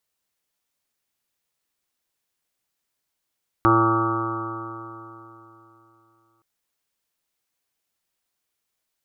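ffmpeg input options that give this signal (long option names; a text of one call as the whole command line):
ffmpeg -f lavfi -i "aevalsrc='0.0794*pow(10,-3*t/3.22)*sin(2*PI*112.03*t)+0.0168*pow(10,-3*t/3.22)*sin(2*PI*224.24*t)+0.141*pow(10,-3*t/3.22)*sin(2*PI*336.82*t)+0.02*pow(10,-3*t/3.22)*sin(2*PI*449.93*t)+0.0299*pow(10,-3*t/3.22)*sin(2*PI*563.77*t)+0.0158*pow(10,-3*t/3.22)*sin(2*PI*678.5*t)+0.0422*pow(10,-3*t/3.22)*sin(2*PI*794.3*t)+0.0562*pow(10,-3*t/3.22)*sin(2*PI*911.35*t)+0.0178*pow(10,-3*t/3.22)*sin(2*PI*1029.81*t)+0.133*pow(10,-3*t/3.22)*sin(2*PI*1149.84*t)+0.1*pow(10,-3*t/3.22)*sin(2*PI*1271.61*t)+0.0398*pow(10,-3*t/3.22)*sin(2*PI*1395.28*t)+0.0112*pow(10,-3*t/3.22)*sin(2*PI*1520.99*t)':duration=2.77:sample_rate=44100" out.wav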